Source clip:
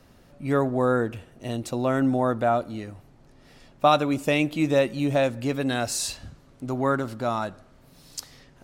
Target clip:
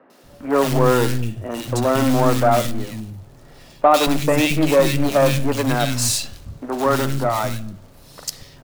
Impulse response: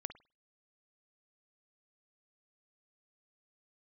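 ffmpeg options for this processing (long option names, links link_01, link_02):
-filter_complex "[0:a]acrusher=bits=3:mode=log:mix=0:aa=0.000001,aeval=exprs='0.473*(cos(1*acos(clip(val(0)/0.473,-1,1)))-cos(1*PI/2))+0.0473*(cos(5*acos(clip(val(0)/0.473,-1,1)))-cos(5*PI/2))+0.0531*(cos(8*acos(clip(val(0)/0.473,-1,1)))-cos(8*PI/2))':channel_layout=same,acrossover=split=240|1900[link_01][link_02][link_03];[link_03]adelay=100[link_04];[link_01]adelay=230[link_05];[link_05][link_02][link_04]amix=inputs=3:normalize=0,asplit=2[link_06][link_07];[1:a]atrim=start_sample=2205[link_08];[link_07][link_08]afir=irnorm=-1:irlink=0,volume=2dB[link_09];[link_06][link_09]amix=inputs=2:normalize=0,volume=-1dB"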